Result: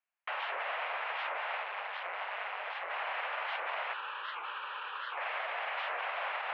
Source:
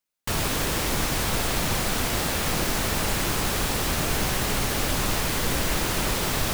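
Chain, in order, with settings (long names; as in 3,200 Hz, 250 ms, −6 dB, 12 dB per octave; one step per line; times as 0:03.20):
brickwall limiter −21 dBFS, peak gain reduction 9.5 dB
0:01.62–0:02.90: ring modulation 100 Hz
0:03.93–0:05.18: phaser with its sweep stopped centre 1,900 Hz, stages 6
single-sideband voice off tune +170 Hz 470–2,600 Hz
wow of a warped record 78 rpm, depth 250 cents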